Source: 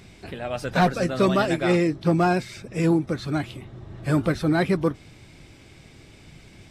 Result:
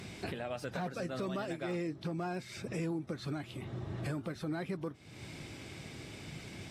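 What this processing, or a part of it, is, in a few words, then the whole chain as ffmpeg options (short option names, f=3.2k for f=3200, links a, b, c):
podcast mastering chain: -af "highpass=89,deesser=0.85,acompressor=threshold=-39dB:ratio=2,alimiter=level_in=6.5dB:limit=-24dB:level=0:latency=1:release=349,volume=-6.5dB,volume=3dB" -ar 44100 -c:a libmp3lame -b:a 96k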